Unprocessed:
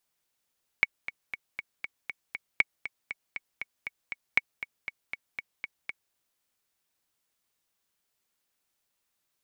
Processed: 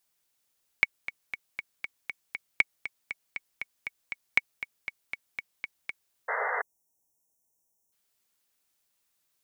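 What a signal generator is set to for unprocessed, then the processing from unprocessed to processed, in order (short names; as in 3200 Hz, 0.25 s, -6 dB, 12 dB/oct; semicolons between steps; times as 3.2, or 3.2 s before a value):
metronome 237 bpm, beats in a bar 7, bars 3, 2230 Hz, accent 13.5 dB -7.5 dBFS
spectral delete 6.43–7.92, 1000–5400 Hz; high shelf 4300 Hz +5 dB; painted sound noise, 6.28–6.62, 410–2100 Hz -30 dBFS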